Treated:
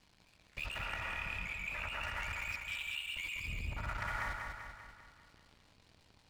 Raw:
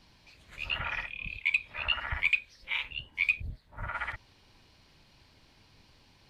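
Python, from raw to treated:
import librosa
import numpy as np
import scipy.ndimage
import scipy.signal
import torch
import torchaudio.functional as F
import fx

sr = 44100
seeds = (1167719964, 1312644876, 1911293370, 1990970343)

p1 = scipy.signal.sosfilt(scipy.signal.butter(2, 5800.0, 'lowpass', fs=sr, output='sos'), x)
p2 = fx.rev_plate(p1, sr, seeds[0], rt60_s=0.5, hf_ratio=0.25, predelay_ms=115, drr_db=2.5)
p3 = fx.level_steps(p2, sr, step_db=16)
p4 = fx.brickwall_highpass(p3, sr, low_hz=2300.0, at=(2.55, 3.15))
p5 = fx.leveller(p4, sr, passes=3)
p6 = fx.over_compress(p5, sr, threshold_db=-33.0, ratio=-1.0)
p7 = fx.high_shelf(p6, sr, hz=4400.0, db=-8.0, at=(0.78, 2.03))
p8 = p7 + fx.echo_feedback(p7, sr, ms=195, feedback_pct=55, wet_db=-4.5, dry=0)
y = F.gain(torch.from_numpy(p8), -6.5).numpy()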